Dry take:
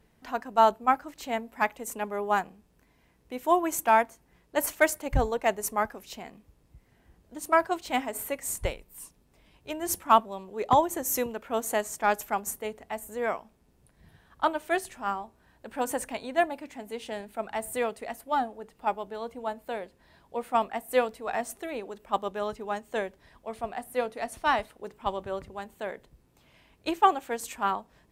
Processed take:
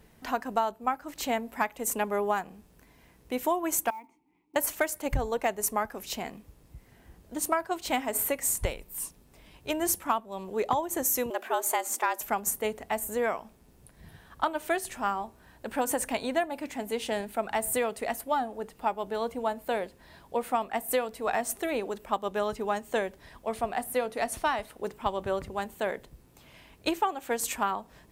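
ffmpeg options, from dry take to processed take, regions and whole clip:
ffmpeg -i in.wav -filter_complex "[0:a]asettb=1/sr,asplit=3[link_01][link_02][link_03];[link_01]atrim=end=3.904[link_04];[link_02]atrim=start=3.9:end=4.56,asetpts=PTS-STARTPTS,afade=type=in:duration=0.004:curve=qsin,afade=type=out:start_time=0.656:duration=0.004:curve=qsin,acompressor=threshold=-29dB:ratio=3:attack=3.2:release=140:knee=1:detection=peak,asplit=3[link_05][link_06][link_07];[link_05]bandpass=frequency=300:width_type=q:width=8,volume=0dB[link_08];[link_06]bandpass=frequency=870:width_type=q:width=8,volume=-6dB[link_09];[link_07]bandpass=frequency=2240:width_type=q:width=8,volume=-9dB[link_10];[link_08][link_09][link_10]amix=inputs=3:normalize=0,acrusher=bits=7:mode=log:mix=0:aa=0.000001[link_11];[link_03]atrim=start=4.556[link_12];[link_04][link_11]acrossfade=duration=0.004:curve1=hsin:curve2=qsin[link_13];[link_13][link_12]acrossfade=duration=0.004:curve1=qsin:curve2=hsin,asettb=1/sr,asplit=3[link_14][link_15][link_16];[link_14]atrim=end=11.304[link_17];[link_15]atrim=start=11.3:end=12.21,asetpts=PTS-STARTPTS,afade=type=in:duration=0.004:curve=qsin,afade=type=out:start_time=0.906:duration=0.004:curve=qsin,highpass=frequency=51:width=0.5412,highpass=frequency=51:width=1.3066,afreqshift=160[link_18];[link_16]atrim=start=12.206[link_19];[link_17][link_18]acrossfade=duration=0.004:curve1=hsin:curve2=qsin[link_20];[link_20][link_19]acrossfade=duration=0.004:curve1=qsin:curve2=hsin,highshelf=frequency=8400:gain=5.5,acompressor=threshold=-30dB:ratio=10,volume=6dB" out.wav

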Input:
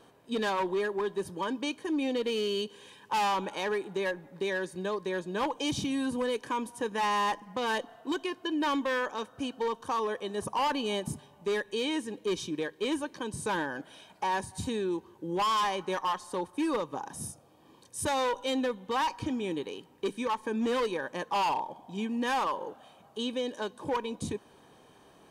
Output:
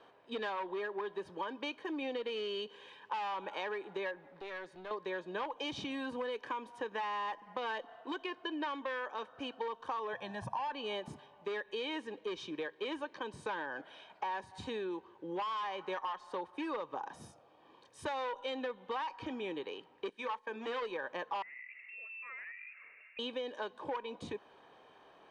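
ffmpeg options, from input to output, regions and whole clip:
ffmpeg -i in.wav -filter_complex "[0:a]asettb=1/sr,asplit=3[link_01][link_02][link_03];[link_01]atrim=end=4.244[link_04];[link_02]atrim=start=4.24:end=4.91,asetpts=PTS-STARTPTS,afade=type=in:duration=0.004:curve=qsin,afade=type=out:start_time=0.666:duration=0.004:curve=qsin,acompressor=threshold=-48dB:ratio=1.5:attack=3.2:release=140:knee=1:detection=peak,aeval=exprs='clip(val(0),-1,0.00447)':channel_layout=same[link_05];[link_03]atrim=start=4.906[link_06];[link_04][link_05]acrossfade=duration=0.004:curve1=hsin:curve2=qsin[link_07];[link_07][link_06]acrossfade=duration=0.004:curve1=qsin:curve2=hsin,asettb=1/sr,asplit=3[link_08][link_09][link_10];[link_08]atrim=end=10.134[link_11];[link_09]atrim=start=10.13:end=10.72,asetpts=PTS-STARTPTS,afade=type=in:duration=0.004:curve=qsin,afade=type=out:start_time=0.586:duration=0.004:curve=qsin,equalizer=frequency=120:width_type=o:width=1:gain=15,acompressor=threshold=-30dB:ratio=2.5:attack=3.2:release=140:knee=1:detection=peak,aecho=1:1:1.2:0.75,atrim=end_sample=26019[link_12];[link_10]atrim=start=10.716[link_13];[link_11][link_12]acrossfade=duration=0.004:curve1=hsin:curve2=qsin[link_14];[link_14][link_13]acrossfade=duration=0.004:curve1=qsin:curve2=hsin,asettb=1/sr,asplit=3[link_15][link_16][link_17];[link_15]atrim=end=20.094[link_18];[link_16]atrim=start=20.09:end=20.82,asetpts=PTS-STARTPTS,afade=type=in:duration=0.004:curve=qsin,afade=type=out:start_time=0.726:duration=0.004:curve=qsin,bandreject=frequency=60:width_type=h:width=6,bandreject=frequency=120:width_type=h:width=6,bandreject=frequency=180:width_type=h:width=6,bandreject=frequency=240:width_type=h:width=6,bandreject=frequency=300:width_type=h:width=6,bandreject=frequency=360:width_type=h:width=6,bandreject=frequency=420:width_type=h:width=6,bandreject=frequency=480:width_type=h:width=6,bandreject=frequency=540:width_type=h:width=6,agate=range=-10dB:threshold=-40dB:ratio=16:release=100:detection=peak,lowshelf=frequency=390:gain=-7.5[link_19];[link_17]atrim=start=20.816[link_20];[link_18][link_19]acrossfade=duration=0.004:curve1=hsin:curve2=qsin[link_21];[link_21][link_20]acrossfade=duration=0.004:curve1=qsin:curve2=hsin,asettb=1/sr,asplit=3[link_22][link_23][link_24];[link_22]atrim=end=21.424[link_25];[link_23]atrim=start=21.42:end=23.19,asetpts=PTS-STARTPTS,afade=type=in:duration=0.004:curve=qsin,afade=type=out:start_time=1.766:duration=0.004:curve=qsin,lowpass=frequency=2500:width_type=q:width=0.5098,lowpass=frequency=2500:width_type=q:width=0.6013,lowpass=frequency=2500:width_type=q:width=0.9,lowpass=frequency=2500:width_type=q:width=2.563,afreqshift=-2900,acompressor=threshold=-46dB:ratio=5:attack=3.2:release=140:knee=1:detection=peak[link_26];[link_24]atrim=start=23.186[link_27];[link_25][link_26]acrossfade=duration=0.004:curve1=hsin:curve2=qsin[link_28];[link_28][link_27]acrossfade=duration=0.004:curve1=qsin:curve2=hsin,lowpass=8400,acrossover=split=400 3900:gain=0.224 1 0.112[link_29][link_30][link_31];[link_29][link_30][link_31]amix=inputs=3:normalize=0,acompressor=threshold=-35dB:ratio=6" out.wav

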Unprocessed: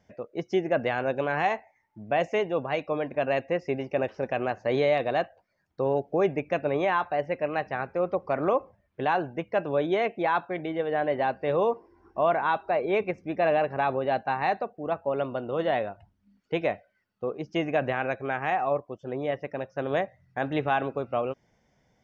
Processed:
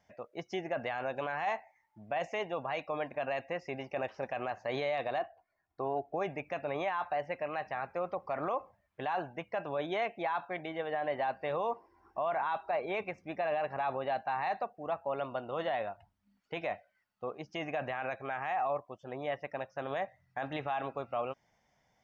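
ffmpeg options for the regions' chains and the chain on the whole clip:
ffmpeg -i in.wav -filter_complex "[0:a]asettb=1/sr,asplit=3[link_01][link_02][link_03];[link_01]atrim=end=5.184[link_04];[link_02]atrim=start=5.18:end=6.14,asetpts=PTS-STARTPTS,afade=type=in:duration=0.004:curve=qsin,afade=type=out:start_time=0.956:duration=0.004:curve=qsin,lowpass=frequency=1400:poles=1,aecho=1:1:2.8:0.55,atrim=end_sample=42336[link_05];[link_03]atrim=start=6.136[link_06];[link_04][link_05]acrossfade=duration=0.004:curve1=hsin:curve2=qsin[link_07];[link_07][link_06]acrossfade=duration=0.004:curve1=qsin:curve2=hsin,lowshelf=frequency=570:width_type=q:width=1.5:gain=-6.5,alimiter=limit=-22dB:level=0:latency=1:release=22,bandreject=frequency=1500:width=27,volume=-2.5dB" out.wav

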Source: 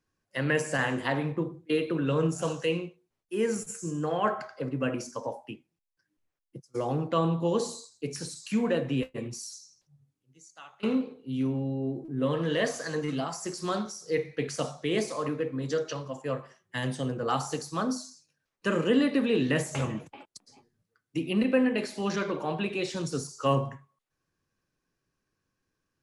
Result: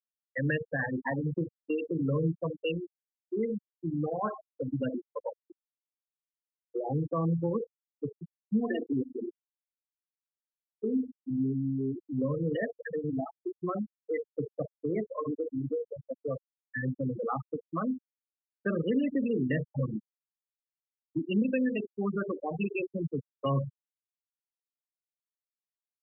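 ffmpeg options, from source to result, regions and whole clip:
ffmpeg -i in.wav -filter_complex "[0:a]asettb=1/sr,asplit=3[link_01][link_02][link_03];[link_01]atrim=end=8.604[link_04];[link_02]atrim=start=8.6:end=11.3,asetpts=PTS-STARTPTS,afade=type=in:duration=0.004:curve=qsin,afade=type=out:start_time=2.696:duration=0.004:curve=qsin,bass=frequency=250:gain=-2,treble=frequency=4000:gain=-3,aecho=1:1:2.8:0.75,atrim=end_sample=119070,asplit=2[link_05][link_06];[link_06]adelay=97,lowpass=frequency=4000:poles=1,volume=-13.5dB,asplit=2[link_07][link_08];[link_08]adelay=97,lowpass=frequency=4000:poles=1,volume=0.42,asplit=2[link_09][link_10];[link_10]adelay=97,lowpass=frequency=4000:poles=1,volume=0.42,asplit=2[link_11][link_12];[link_12]adelay=97,lowpass=frequency=4000:poles=1,volume=0.42[link_13];[link_05][link_07][link_09][link_11][link_13]amix=inputs=5:normalize=0,atrim=end_sample=119070[link_14];[link_03]atrim=start=11.296[link_15];[link_04][link_14]acrossfade=duration=0.004:curve1=hsin:curve2=qsin[link_16];[link_16][link_15]acrossfade=duration=0.004:curve1=qsin:curve2=hsin,highpass=frequency=150:poles=1,afftfilt=real='re*gte(hypot(re,im),0.112)':imag='im*gte(hypot(re,im),0.112)':win_size=1024:overlap=0.75,acrossover=split=190|3000[link_17][link_18][link_19];[link_18]acompressor=threshold=-38dB:ratio=3[link_20];[link_17][link_20][link_19]amix=inputs=3:normalize=0,volume=5dB" out.wav

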